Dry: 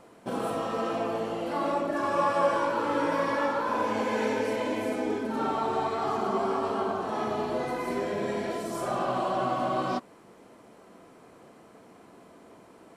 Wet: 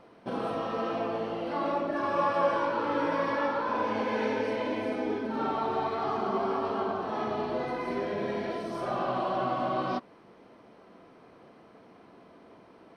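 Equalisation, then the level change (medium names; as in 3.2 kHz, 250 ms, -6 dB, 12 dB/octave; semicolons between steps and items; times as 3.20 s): Savitzky-Golay filter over 15 samples; -1.5 dB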